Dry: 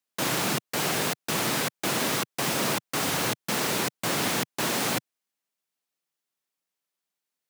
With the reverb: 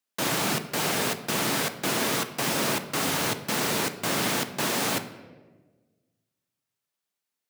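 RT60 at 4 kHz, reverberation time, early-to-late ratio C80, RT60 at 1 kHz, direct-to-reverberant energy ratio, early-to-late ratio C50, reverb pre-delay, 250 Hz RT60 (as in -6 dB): 0.80 s, 1.4 s, 14.0 dB, 1.1 s, 9.0 dB, 12.0 dB, 3 ms, 1.6 s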